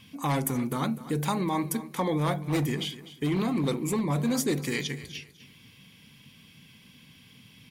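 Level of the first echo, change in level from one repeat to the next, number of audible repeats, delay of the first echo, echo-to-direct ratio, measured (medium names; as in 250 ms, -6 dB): -15.5 dB, -11.0 dB, 2, 250 ms, -15.0 dB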